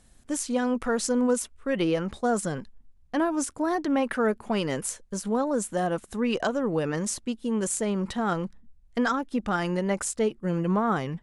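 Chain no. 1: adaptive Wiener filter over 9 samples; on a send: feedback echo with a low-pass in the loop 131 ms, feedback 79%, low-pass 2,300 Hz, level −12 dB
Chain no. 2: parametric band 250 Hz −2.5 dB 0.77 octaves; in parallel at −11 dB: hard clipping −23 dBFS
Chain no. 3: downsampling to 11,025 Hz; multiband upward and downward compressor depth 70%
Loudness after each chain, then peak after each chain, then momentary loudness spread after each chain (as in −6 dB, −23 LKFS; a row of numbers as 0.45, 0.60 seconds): −27.5, −26.5, −27.5 LKFS; −12.5, −12.0, −13.5 dBFS; 7, 6, 5 LU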